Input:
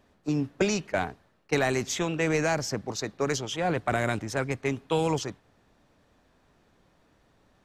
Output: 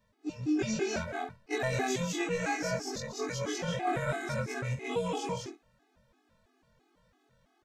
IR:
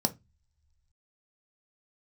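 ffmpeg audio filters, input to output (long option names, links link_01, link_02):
-af "afftfilt=real='re':imag='-im':win_size=2048:overlap=0.75,aecho=1:1:142.9|198.3|247.8:0.282|0.891|0.282,afftfilt=real='re*gt(sin(2*PI*3*pts/sr)*(1-2*mod(floor(b*sr/1024/220),2)),0)':imag='im*gt(sin(2*PI*3*pts/sr)*(1-2*mod(floor(b*sr/1024/220),2)),0)':win_size=1024:overlap=0.75"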